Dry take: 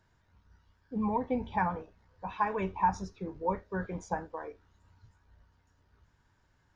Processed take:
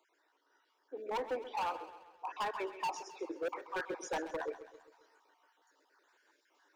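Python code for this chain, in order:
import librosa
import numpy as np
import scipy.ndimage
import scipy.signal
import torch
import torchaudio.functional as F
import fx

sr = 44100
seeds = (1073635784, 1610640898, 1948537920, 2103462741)

y = fx.spec_dropout(x, sr, seeds[0], share_pct=32)
y = scipy.signal.sosfilt(scipy.signal.butter(12, 300.0, 'highpass', fs=sr, output='sos'), y)
y = fx.rider(y, sr, range_db=4, speed_s=0.5)
y = np.clip(10.0 ** (34.0 / 20.0) * y, -1.0, 1.0) / 10.0 ** (34.0 / 20.0)
y = fx.echo_feedback(y, sr, ms=132, feedback_pct=51, wet_db=-13.5)
y = y * librosa.db_to_amplitude(1.5)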